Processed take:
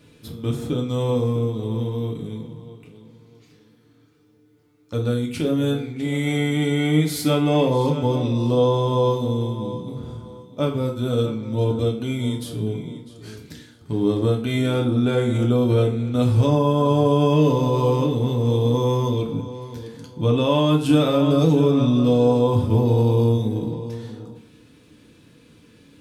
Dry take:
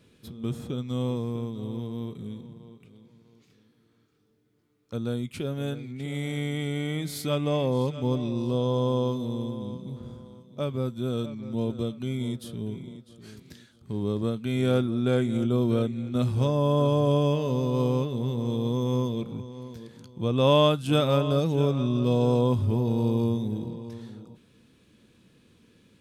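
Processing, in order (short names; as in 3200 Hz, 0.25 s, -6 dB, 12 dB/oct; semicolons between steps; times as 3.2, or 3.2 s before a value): limiter -18 dBFS, peak gain reduction 8.5 dB; FDN reverb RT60 0.54 s, low-frequency decay 0.9×, high-frequency decay 0.75×, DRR 0.5 dB; gain +5.5 dB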